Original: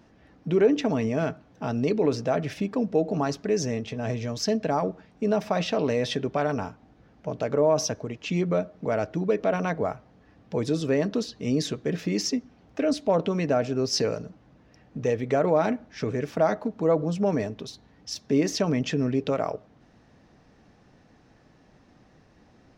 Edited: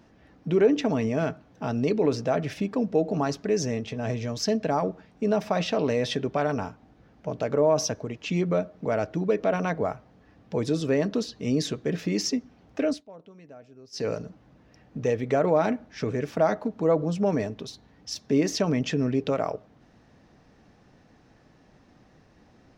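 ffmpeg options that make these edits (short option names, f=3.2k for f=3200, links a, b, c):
-filter_complex "[0:a]asplit=3[a][b][c];[a]atrim=end=13.04,asetpts=PTS-STARTPTS,afade=t=out:st=12.85:d=0.19:silence=0.0668344[d];[b]atrim=start=13.04:end=13.92,asetpts=PTS-STARTPTS,volume=-23.5dB[e];[c]atrim=start=13.92,asetpts=PTS-STARTPTS,afade=t=in:d=0.19:silence=0.0668344[f];[d][e][f]concat=n=3:v=0:a=1"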